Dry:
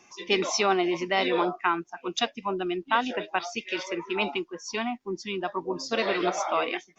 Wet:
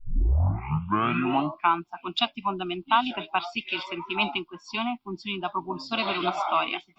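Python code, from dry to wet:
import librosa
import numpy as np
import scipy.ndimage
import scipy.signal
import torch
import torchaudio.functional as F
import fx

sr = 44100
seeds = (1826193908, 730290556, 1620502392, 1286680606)

y = fx.tape_start_head(x, sr, length_s=1.74)
y = fx.fixed_phaser(y, sr, hz=1800.0, stages=6)
y = y * 10.0 ** (4.5 / 20.0)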